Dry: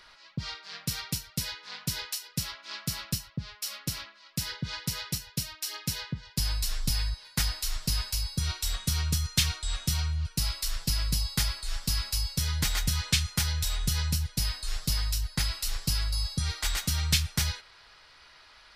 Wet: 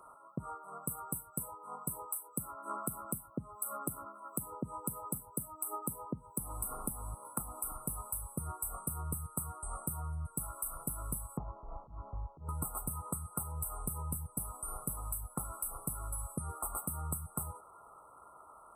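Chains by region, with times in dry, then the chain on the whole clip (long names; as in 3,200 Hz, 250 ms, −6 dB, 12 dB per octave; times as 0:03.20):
0:02.36–0:07.72: parametric band 250 Hz +5.5 dB 0.88 octaves + multiband upward and downward compressor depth 70%
0:11.37–0:12.49: volume swells 211 ms + Butterworth low-pass 1,000 Hz
whole clip: high-pass filter 280 Hz 6 dB per octave; brick-wall band-stop 1,400–7,900 Hz; downward compressor 6 to 1, threshold −41 dBFS; level +6 dB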